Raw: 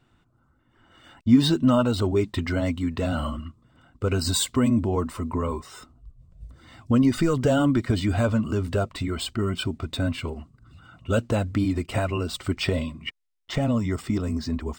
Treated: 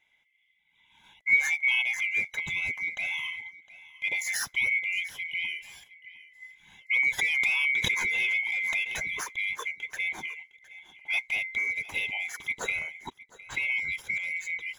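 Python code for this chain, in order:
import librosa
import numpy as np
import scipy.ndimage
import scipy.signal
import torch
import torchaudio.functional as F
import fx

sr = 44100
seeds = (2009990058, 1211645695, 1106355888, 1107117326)

y = fx.band_swap(x, sr, width_hz=2000)
y = y + 10.0 ** (-19.0 / 20.0) * np.pad(y, (int(710 * sr / 1000.0), 0))[:len(y)]
y = fx.pre_swell(y, sr, db_per_s=22.0, at=(7.18, 9.23), fade=0.02)
y = y * 10.0 ** (-6.5 / 20.0)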